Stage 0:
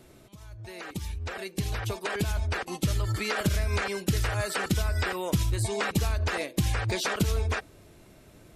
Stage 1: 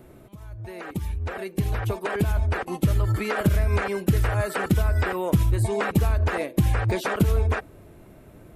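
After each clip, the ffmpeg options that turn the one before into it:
-af "equalizer=f=5.3k:w=0.56:g=-14,volume=6dB"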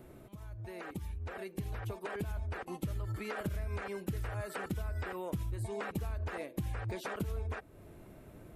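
-af "acompressor=threshold=-38dB:ratio=2,volume=-5dB"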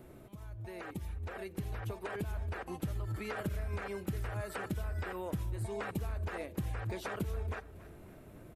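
-af "aecho=1:1:278|556|834|1112:0.126|0.0642|0.0327|0.0167"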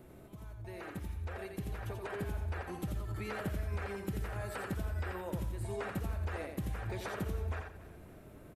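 -af "aecho=1:1:86|172|258|344:0.562|0.157|0.0441|0.0123,volume=-1.5dB"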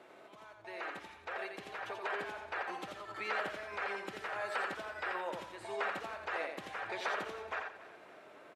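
-af "highpass=680,lowpass=4.4k,volume=7.5dB"

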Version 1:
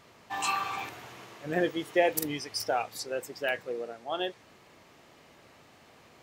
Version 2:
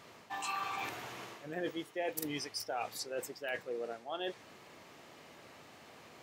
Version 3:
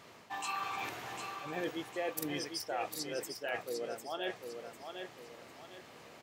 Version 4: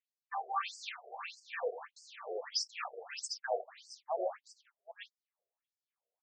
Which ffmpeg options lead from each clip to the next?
-af "highpass=f=120:p=1,areverse,acompressor=threshold=-38dB:ratio=4,areverse,volume=1.5dB"
-af "aecho=1:1:751|1502|2253|3004:0.473|0.166|0.058|0.0203"
-af "agate=range=-44dB:threshold=-42dB:ratio=16:detection=peak,afftfilt=real='re*between(b*sr/1024,510*pow(6500/510,0.5+0.5*sin(2*PI*1.6*pts/sr))/1.41,510*pow(6500/510,0.5+0.5*sin(2*PI*1.6*pts/sr))*1.41)':imag='im*between(b*sr/1024,510*pow(6500/510,0.5+0.5*sin(2*PI*1.6*pts/sr))/1.41,510*pow(6500/510,0.5+0.5*sin(2*PI*1.6*pts/sr))*1.41)':win_size=1024:overlap=0.75,volume=7dB"

